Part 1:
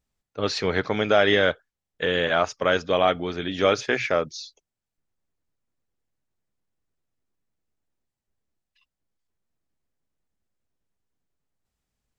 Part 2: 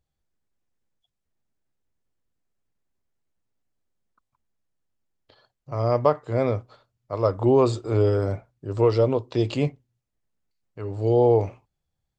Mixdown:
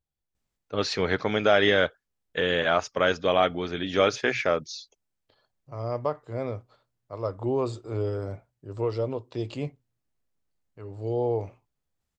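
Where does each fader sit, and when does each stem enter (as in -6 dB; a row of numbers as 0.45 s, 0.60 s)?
-1.5 dB, -8.5 dB; 0.35 s, 0.00 s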